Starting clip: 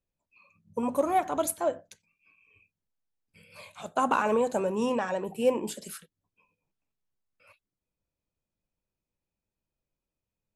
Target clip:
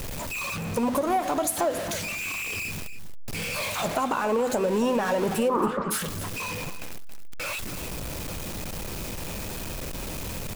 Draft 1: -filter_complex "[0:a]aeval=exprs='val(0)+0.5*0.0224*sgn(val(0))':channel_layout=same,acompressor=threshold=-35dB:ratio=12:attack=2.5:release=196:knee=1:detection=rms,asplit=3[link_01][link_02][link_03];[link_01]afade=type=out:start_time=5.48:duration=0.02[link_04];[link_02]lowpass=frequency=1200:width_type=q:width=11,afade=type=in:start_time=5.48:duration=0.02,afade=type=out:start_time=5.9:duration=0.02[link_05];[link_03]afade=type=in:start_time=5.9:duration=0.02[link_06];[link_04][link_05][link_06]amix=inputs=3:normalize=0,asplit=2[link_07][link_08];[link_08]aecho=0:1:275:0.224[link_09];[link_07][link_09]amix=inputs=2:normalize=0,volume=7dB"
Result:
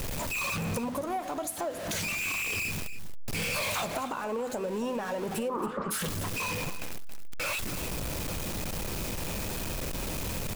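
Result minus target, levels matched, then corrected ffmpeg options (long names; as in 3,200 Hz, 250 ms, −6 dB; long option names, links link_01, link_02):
downward compressor: peak gain reduction +8.5 dB
-filter_complex "[0:a]aeval=exprs='val(0)+0.5*0.0224*sgn(val(0))':channel_layout=same,acompressor=threshold=-26dB:ratio=12:attack=2.5:release=196:knee=1:detection=rms,asplit=3[link_01][link_02][link_03];[link_01]afade=type=out:start_time=5.48:duration=0.02[link_04];[link_02]lowpass=frequency=1200:width_type=q:width=11,afade=type=in:start_time=5.48:duration=0.02,afade=type=out:start_time=5.9:duration=0.02[link_05];[link_03]afade=type=in:start_time=5.9:duration=0.02[link_06];[link_04][link_05][link_06]amix=inputs=3:normalize=0,asplit=2[link_07][link_08];[link_08]aecho=0:1:275:0.224[link_09];[link_07][link_09]amix=inputs=2:normalize=0,volume=7dB"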